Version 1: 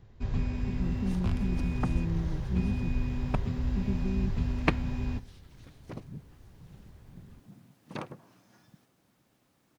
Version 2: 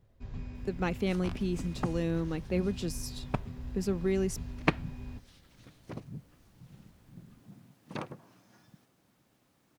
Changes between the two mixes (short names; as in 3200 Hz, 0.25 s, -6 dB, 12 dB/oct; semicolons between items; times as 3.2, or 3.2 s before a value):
speech: remove Butterworth band-pass 170 Hz, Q 1.1; first sound -10.5 dB